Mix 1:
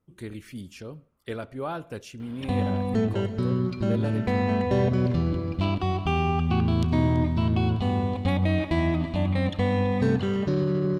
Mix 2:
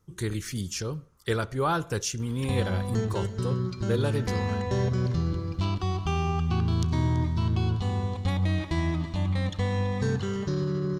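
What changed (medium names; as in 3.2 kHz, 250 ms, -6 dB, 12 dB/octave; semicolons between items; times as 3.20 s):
speech +11.0 dB; master: add fifteen-band graphic EQ 250 Hz -10 dB, 630 Hz -10 dB, 2.5 kHz -7 dB, 6.3 kHz +9 dB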